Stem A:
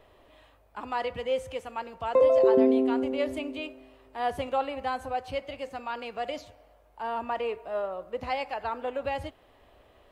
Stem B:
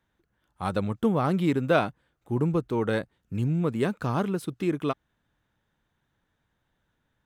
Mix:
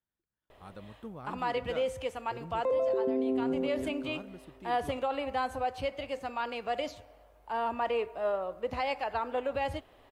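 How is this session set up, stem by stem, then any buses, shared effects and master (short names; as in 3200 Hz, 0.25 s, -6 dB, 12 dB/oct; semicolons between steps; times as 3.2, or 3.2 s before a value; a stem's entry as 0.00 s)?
+0.5 dB, 0.50 s, no send, dry
-20.0 dB, 0.00 s, no send, dry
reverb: off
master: limiter -22.5 dBFS, peak gain reduction 12 dB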